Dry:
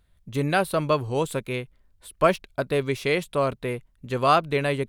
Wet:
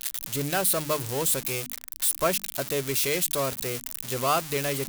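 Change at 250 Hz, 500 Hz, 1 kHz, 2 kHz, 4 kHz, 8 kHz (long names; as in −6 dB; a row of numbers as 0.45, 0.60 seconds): −5.5, −5.0, −5.5, −3.5, +3.0, +16.0 decibels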